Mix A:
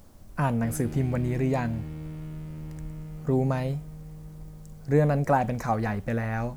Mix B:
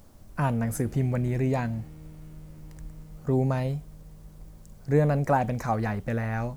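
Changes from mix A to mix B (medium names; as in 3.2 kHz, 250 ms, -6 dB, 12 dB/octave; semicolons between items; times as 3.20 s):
background -9.0 dB; reverb: off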